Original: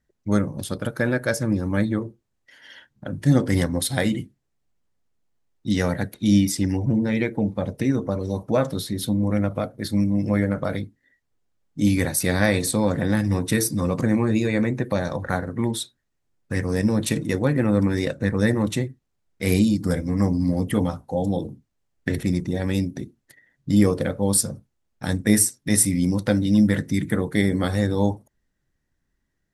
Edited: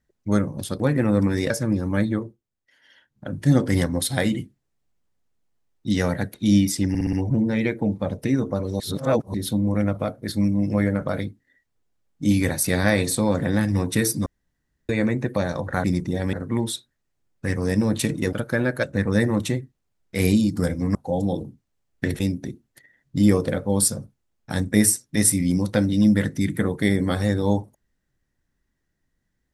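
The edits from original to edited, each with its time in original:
0:00.80–0:01.30: swap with 0:17.40–0:18.10
0:01.95–0:03.09: duck −10 dB, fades 0.25 s
0:06.69: stutter 0.06 s, 5 plays
0:08.36–0:08.90: reverse
0:13.82–0:14.45: fill with room tone
0:20.22–0:20.99: remove
0:22.24–0:22.73: move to 0:15.40

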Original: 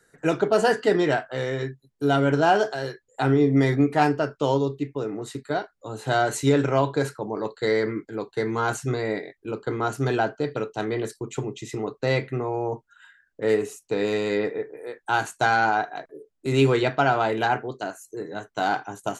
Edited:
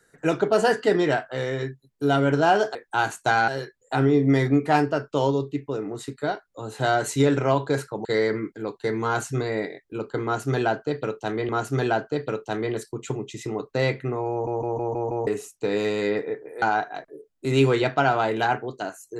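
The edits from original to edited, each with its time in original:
0:07.32–0:07.58: remove
0:09.77–0:11.02: repeat, 2 plays
0:12.59: stutter in place 0.16 s, 6 plays
0:14.90–0:15.63: move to 0:02.75

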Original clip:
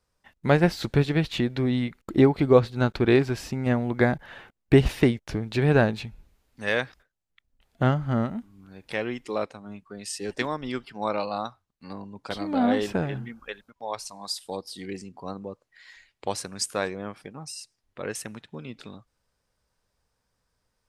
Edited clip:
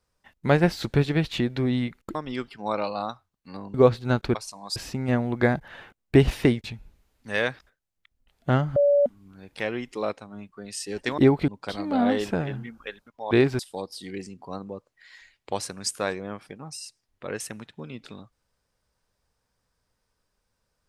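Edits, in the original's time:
0:02.15–0:02.45: swap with 0:10.51–0:12.10
0:03.06–0:03.34: swap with 0:13.93–0:14.34
0:05.22–0:05.97: remove
0:08.09–0:08.39: beep over 573 Hz −15.5 dBFS

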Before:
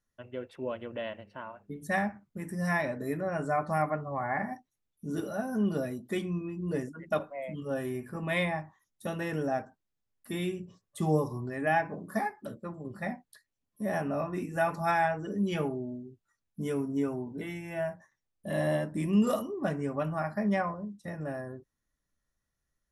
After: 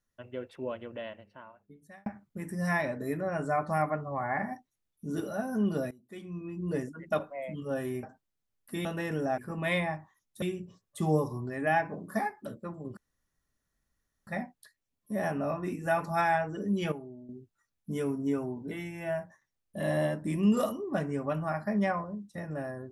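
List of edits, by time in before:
0:00.54–0:02.06: fade out
0:05.91–0:06.58: fade in quadratic, from −19.5 dB
0:08.03–0:09.07: swap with 0:09.60–0:10.42
0:12.97: splice in room tone 1.30 s
0:15.62–0:15.99: clip gain −10 dB

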